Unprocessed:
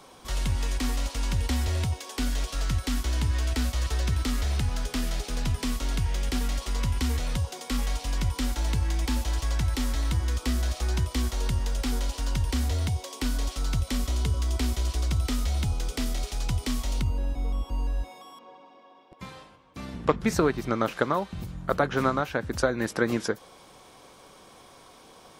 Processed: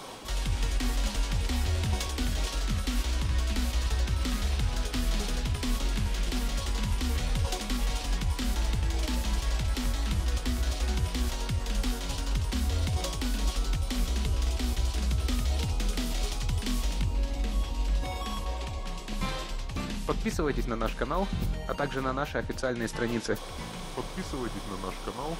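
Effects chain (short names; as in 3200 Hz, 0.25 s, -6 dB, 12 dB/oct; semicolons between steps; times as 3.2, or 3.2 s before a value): bell 3500 Hz +2.5 dB; reverse; compressor 6:1, threshold -36 dBFS, peak gain reduction 19.5 dB; reverse; echoes that change speed 84 ms, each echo -3 st, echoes 2, each echo -6 dB; gain +8.5 dB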